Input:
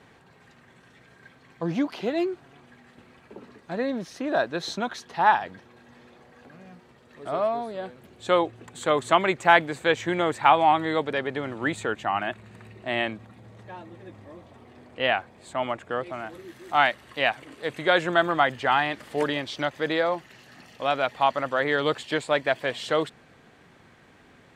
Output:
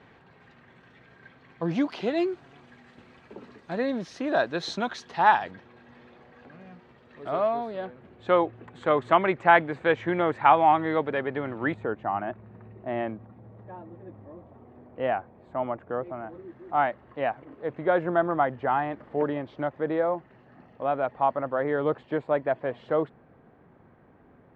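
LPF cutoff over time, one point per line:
3400 Hz
from 1.71 s 6000 Hz
from 5.51 s 3400 Hz
from 7.85 s 2000 Hz
from 11.74 s 1000 Hz

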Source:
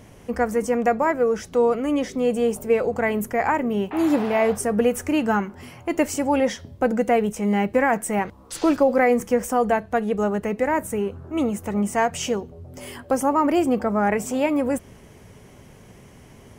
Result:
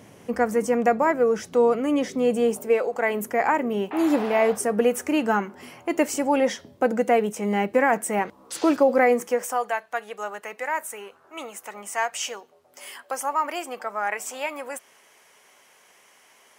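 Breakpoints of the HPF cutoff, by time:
2.42 s 140 Hz
2.9 s 510 Hz
3.26 s 240 Hz
9.05 s 240 Hz
9.69 s 950 Hz

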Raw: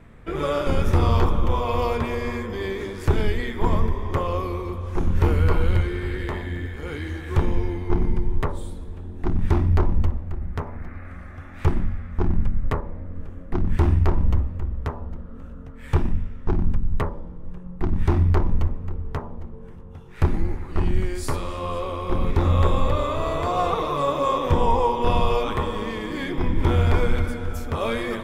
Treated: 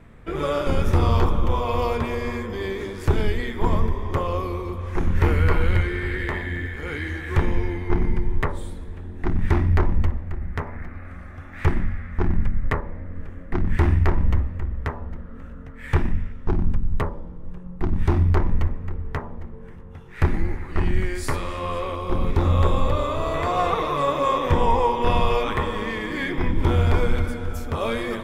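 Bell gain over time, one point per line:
bell 1900 Hz 0.74 oct
0 dB
from 4.79 s +8.5 dB
from 10.86 s 0 dB
from 11.53 s +9 dB
from 16.32 s +1.5 dB
from 18.37 s +8 dB
from 21.95 s -0.5 dB
from 23.34 s +7 dB
from 26.51 s -0.5 dB

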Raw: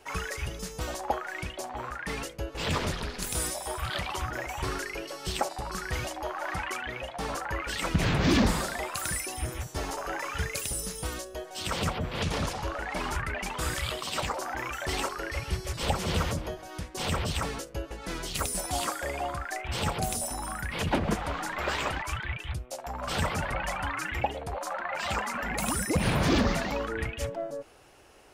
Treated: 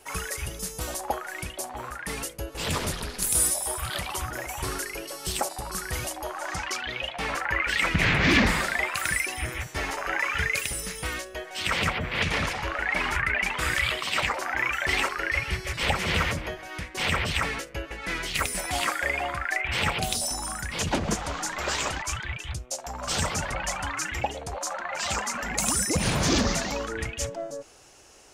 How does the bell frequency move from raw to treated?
bell +13 dB 1.1 oct
6.23 s 11000 Hz
7.3 s 2100 Hz
19.88 s 2100 Hz
20.37 s 6600 Hz

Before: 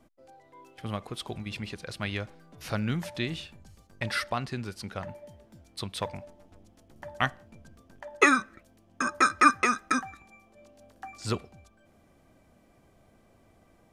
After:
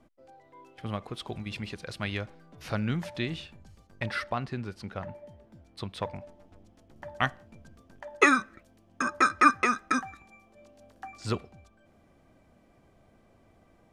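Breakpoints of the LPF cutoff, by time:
LPF 6 dB/oct
4200 Hz
from 1.33 s 8400 Hz
from 2.21 s 4500 Hz
from 4.06 s 2200 Hz
from 6.21 s 4600 Hz
from 7.23 s 7700 Hz
from 9.02 s 4500 Hz
from 9.94 s 8000 Hz
from 11.07 s 4700 Hz

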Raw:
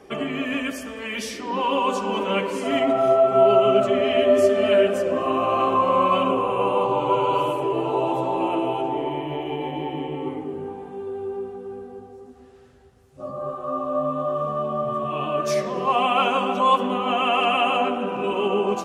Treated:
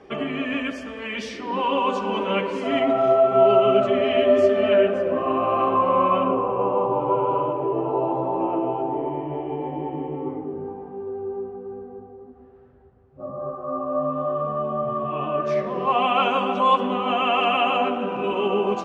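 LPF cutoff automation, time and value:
4.36 s 4100 Hz
5.02 s 2300 Hz
6.06 s 2300 Hz
6.55 s 1200 Hz
13.66 s 1200 Hz
14.21 s 2200 Hz
15.66 s 2200 Hz
16.1 s 4500 Hz

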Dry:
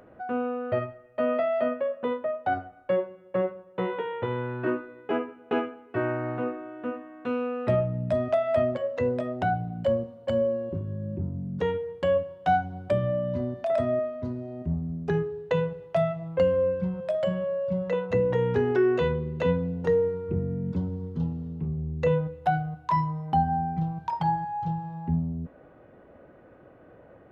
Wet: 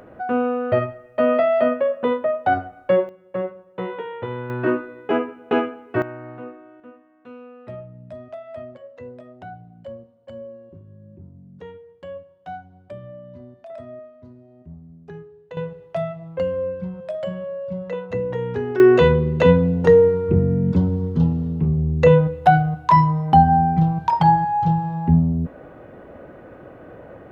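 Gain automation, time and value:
+8 dB
from 3.09 s +0.5 dB
from 4.5 s +7 dB
from 6.02 s -6 dB
from 6.8 s -12 dB
from 15.57 s -1 dB
from 18.8 s +11 dB

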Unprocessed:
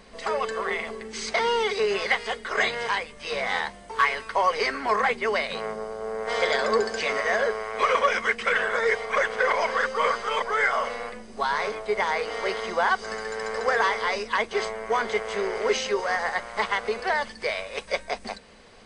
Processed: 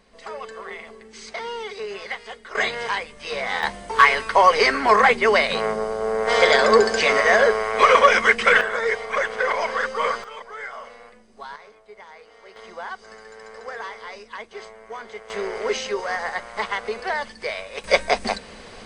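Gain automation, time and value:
-7.5 dB
from 2.55 s +1 dB
from 3.63 s +8 dB
from 8.61 s +0.5 dB
from 10.24 s -11.5 dB
from 11.56 s -19 dB
from 12.56 s -11 dB
from 15.3 s -0.5 dB
from 17.84 s +10 dB

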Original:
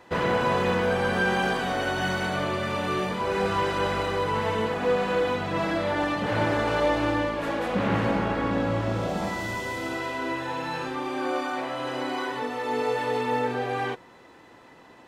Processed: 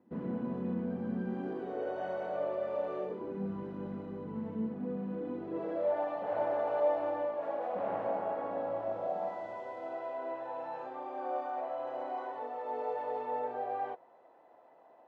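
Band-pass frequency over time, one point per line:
band-pass, Q 4.2
1.27 s 230 Hz
2.02 s 570 Hz
2.98 s 570 Hz
3.39 s 220 Hz
5.12 s 220 Hz
5.99 s 670 Hz

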